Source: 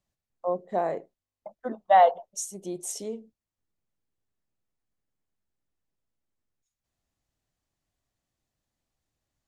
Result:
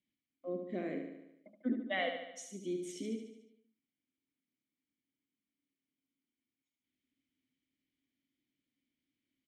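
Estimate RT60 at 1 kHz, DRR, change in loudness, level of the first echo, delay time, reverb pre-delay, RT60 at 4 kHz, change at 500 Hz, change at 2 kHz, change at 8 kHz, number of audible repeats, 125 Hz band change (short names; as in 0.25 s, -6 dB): none, none, -13.5 dB, -6.5 dB, 73 ms, none, none, -13.5 dB, -3.5 dB, -15.5 dB, 6, -3.5 dB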